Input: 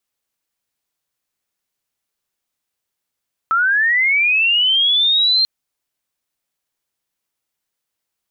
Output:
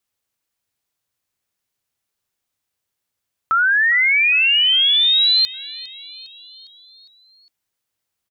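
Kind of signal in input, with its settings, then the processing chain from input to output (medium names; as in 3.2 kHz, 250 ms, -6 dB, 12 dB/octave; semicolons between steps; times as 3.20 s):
sweep linear 1.3 kHz -> 4.2 kHz -12.5 dBFS -> -11.5 dBFS 1.94 s
peaking EQ 97 Hz +7.5 dB 0.68 oct; frequency-shifting echo 406 ms, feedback 57%, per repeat +42 Hz, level -19 dB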